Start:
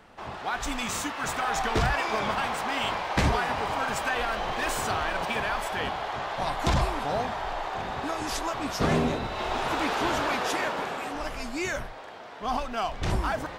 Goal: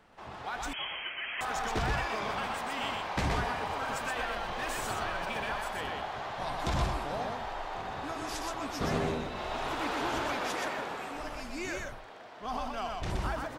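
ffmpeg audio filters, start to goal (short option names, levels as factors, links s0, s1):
-filter_complex "[0:a]aecho=1:1:123:0.708,asettb=1/sr,asplit=3[s0][s1][s2];[s0]atrim=end=0.734[s3];[s1]atrim=start=0.73:end=1.41,asetpts=PTS-STARTPTS,afade=t=in:d=0.004:c=qsin,afade=t=out:st=0.676:d=0.004:c=qsin,lowpass=f=2800:t=q:w=0.5098,lowpass=f=2800:t=q:w=0.6013,lowpass=f=2800:t=q:w=0.9,lowpass=f=2800:t=q:w=2.563,afreqshift=-3300[s4];[s2]atrim=start=1.406[s5];[s3][s4]acrossfade=d=0.004:c1=hsin:c2=qsin[s6];[s6][s5]acrossfade=d=0.004:c1=qsin:c2=hsin,volume=0.422"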